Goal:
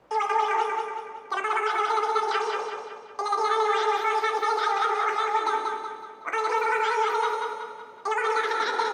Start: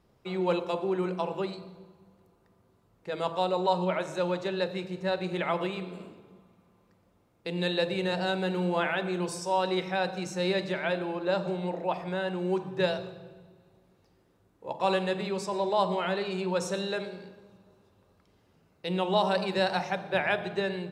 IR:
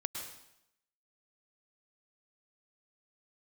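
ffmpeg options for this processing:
-filter_complex "[0:a]acrossover=split=160|400|2100|4700[link_01][link_02][link_03][link_04][link_05];[link_01]acompressor=threshold=-49dB:ratio=4[link_06];[link_02]acompressor=threshold=-41dB:ratio=4[link_07];[link_03]acompressor=threshold=-33dB:ratio=4[link_08];[link_04]acompressor=threshold=-51dB:ratio=4[link_09];[link_05]acompressor=threshold=-55dB:ratio=4[link_10];[link_06][link_07][link_08][link_09][link_10]amix=inputs=5:normalize=0,asplit=2[link_11][link_12];[link_12]adelay=436,lowpass=frequency=3600:poles=1,volume=-4dB,asplit=2[link_13][link_14];[link_14]adelay=436,lowpass=frequency=3600:poles=1,volume=0.49,asplit=2[link_15][link_16];[link_16]adelay=436,lowpass=frequency=3600:poles=1,volume=0.49,asplit=2[link_17][link_18];[link_18]adelay=436,lowpass=frequency=3600:poles=1,volume=0.49,asplit=2[link_19][link_20];[link_20]adelay=436,lowpass=frequency=3600:poles=1,volume=0.49,asplit=2[link_21][link_22];[link_22]adelay=436,lowpass=frequency=3600:poles=1,volume=0.49[link_23];[link_11][link_13][link_15][link_17][link_19][link_21][link_23]amix=inputs=7:normalize=0,acrossover=split=3600[link_24][link_25];[link_25]acompressor=threshold=-56dB:ratio=4:attack=1:release=60[link_26];[link_24][link_26]amix=inputs=2:normalize=0,equalizer=frequency=250:width_type=o:width=1:gain=10,equalizer=frequency=500:width_type=o:width=1:gain=3,equalizer=frequency=4000:width_type=o:width=1:gain=-7,equalizer=frequency=8000:width_type=o:width=1:gain=-12,asetrate=103194,aresample=44100,bandreject=frequency=104:width_type=h:width=4,bandreject=frequency=208:width_type=h:width=4,bandreject=frequency=312:width_type=h:width=4,bandreject=frequency=416:width_type=h:width=4,bandreject=frequency=520:width_type=h:width=4,bandreject=frequency=624:width_type=h:width=4,bandreject=frequency=728:width_type=h:width=4,bandreject=frequency=832:width_type=h:width=4,bandreject=frequency=936:width_type=h:width=4,bandreject=frequency=1040:width_type=h:width=4,bandreject=frequency=1144:width_type=h:width=4,bandreject=frequency=1248:width_type=h:width=4,bandreject=frequency=1352:width_type=h:width=4,bandreject=frequency=1456:width_type=h:width=4,bandreject=frequency=1560:width_type=h:width=4,bandreject=frequency=1664:width_type=h:width=4,bandreject=frequency=1768:width_type=h:width=4,bandreject=frequency=1872:width_type=h:width=4,bandreject=frequency=1976:width_type=h:width=4,bandreject=frequency=2080:width_type=h:width=4,bandreject=frequency=2184:width_type=h:width=4,bandreject=frequency=2288:width_type=h:width=4,bandreject=frequency=2392:width_type=h:width=4,bandreject=frequency=2496:width_type=h:width=4,bandreject=frequency=2600:width_type=h:width=4,bandreject=frequency=2704:width_type=h:width=4,bandreject=frequency=2808:width_type=h:width=4,bandreject=frequency=2912:width_type=h:width=4,asplit=2[link_27][link_28];[1:a]atrim=start_sample=2205,highshelf=frequency=4200:gain=11,adelay=16[link_29];[link_28][link_29]afir=irnorm=-1:irlink=0,volume=-13dB[link_30];[link_27][link_30]amix=inputs=2:normalize=0,volume=3dB"

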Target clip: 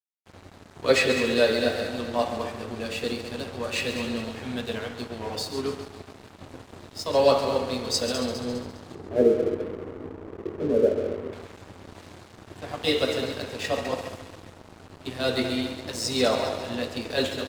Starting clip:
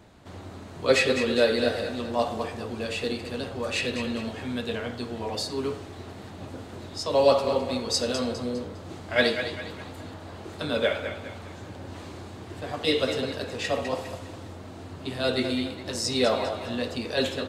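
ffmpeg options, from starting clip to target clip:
ffmpeg -i in.wav -filter_complex "[0:a]asettb=1/sr,asplit=3[link_01][link_02][link_03];[link_01]atrim=end=8.954[link_04];[link_02]atrim=start=8.95:end=11.33,asetpts=PTS-STARTPTS,afade=type=in:duration=0.004:curve=qsin,afade=type=out:start_time=2.376:duration=0.004:curve=qsin,lowpass=frequency=410:width_type=q:width=4.5[link_05];[link_03]atrim=start=11.326[link_06];[link_04][link_05]acrossfade=duration=0.004:curve1=hsin:curve2=qsin[link_07];[link_07][link_06]acrossfade=duration=0.004:curve1=qsin:curve2=hsin,aecho=1:1:138|276|414|552|690|828:0.316|0.171|0.0922|0.0498|0.0269|0.0145,aeval=exprs='sgn(val(0))*max(abs(val(0))-0.00891,0)':channel_layout=same,volume=1dB" out.wav

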